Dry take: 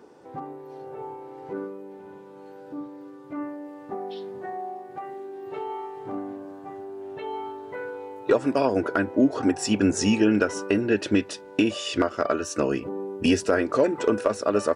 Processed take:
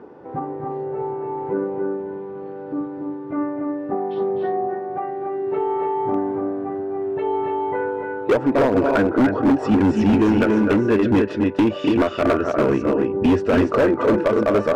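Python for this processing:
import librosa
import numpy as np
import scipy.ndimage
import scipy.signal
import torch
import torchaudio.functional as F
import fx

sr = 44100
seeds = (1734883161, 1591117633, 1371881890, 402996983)

p1 = fx.low_shelf(x, sr, hz=250.0, db=3.0)
p2 = fx.rider(p1, sr, range_db=3, speed_s=0.5)
p3 = p1 + (p2 * 10.0 ** (0.5 / 20.0))
p4 = scipy.signal.sosfilt(scipy.signal.butter(2, 1800.0, 'lowpass', fs=sr, output='sos'), p3)
p5 = fx.echo_multitap(p4, sr, ms=(254, 287), db=(-9.5, -4.5))
y = np.clip(10.0 ** (12.0 / 20.0) * p5, -1.0, 1.0) / 10.0 ** (12.0 / 20.0)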